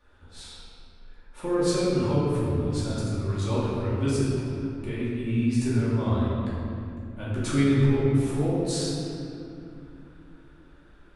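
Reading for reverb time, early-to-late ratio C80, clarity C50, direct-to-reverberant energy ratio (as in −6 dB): 2.6 s, −1.0 dB, −3.5 dB, −10.0 dB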